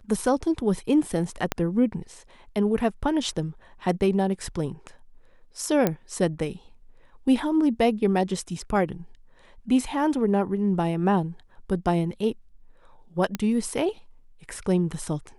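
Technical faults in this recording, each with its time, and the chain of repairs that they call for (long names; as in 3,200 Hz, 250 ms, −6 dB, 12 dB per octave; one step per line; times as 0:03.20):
0:01.52: click −9 dBFS
0:05.87: click −8 dBFS
0:13.35: click −13 dBFS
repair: click removal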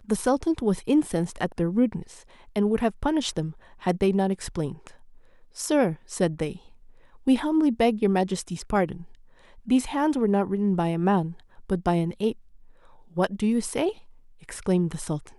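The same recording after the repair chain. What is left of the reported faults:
0:01.52: click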